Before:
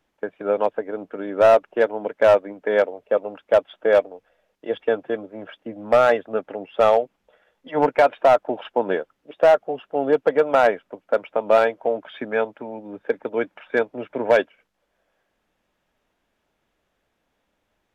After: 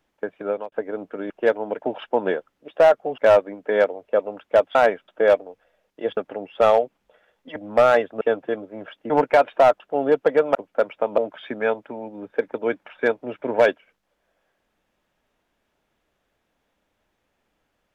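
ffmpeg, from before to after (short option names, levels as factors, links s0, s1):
-filter_complex "[0:a]asplit=14[s0][s1][s2][s3][s4][s5][s6][s7][s8][s9][s10][s11][s12][s13];[s0]atrim=end=0.72,asetpts=PTS-STARTPTS,afade=t=out:st=0.4:d=0.32[s14];[s1]atrim=start=0.72:end=1.302,asetpts=PTS-STARTPTS,afade=t=in:d=0.004:c=hsin[s15];[s2]atrim=start=1.638:end=2.162[s16];[s3]atrim=start=8.448:end=9.812[s17];[s4]atrim=start=2.158:end=3.732[s18];[s5]atrim=start=10.558:end=10.892[s19];[s6]atrim=start=3.728:end=4.822[s20];[s7]atrim=start=6.358:end=7.752[s21];[s8]atrim=start=5.708:end=6.362[s22];[s9]atrim=start=4.818:end=5.712[s23];[s10]atrim=start=7.748:end=8.452[s24];[s11]atrim=start=9.808:end=10.562[s25];[s12]atrim=start=10.888:end=11.522[s26];[s13]atrim=start=11.888[s27];[s14][s15]concat=n=2:v=0:a=1[s28];[s28][s16]acrossfade=d=0.004:c1=hsin:c2=hsin[s29];[s29][s17]acrossfade=d=0.004:c1=hsin:c2=hsin[s30];[s30][s18]acrossfade=d=0.004:c1=hsin:c2=hsin[s31];[s31][s19]acrossfade=d=0.004:c1=hsin:c2=hsin[s32];[s32][s20]acrossfade=d=0.004:c1=hsin:c2=hsin[s33];[s33][s21]acrossfade=d=0.004:c1=hsin:c2=hsin[s34];[s34][s22]acrossfade=d=0.004:c1=hsin:c2=hsin[s35];[s35][s23]acrossfade=d=0.004:c1=hsin:c2=hsin[s36];[s36][s24]acrossfade=d=0.004:c1=hsin:c2=hsin[s37];[s37][s25]acrossfade=d=0.004:c1=hsin:c2=hsin[s38];[s38][s26]acrossfade=d=0.004:c1=hsin:c2=hsin[s39];[s39][s27]acrossfade=d=0.004:c1=hsin:c2=hsin"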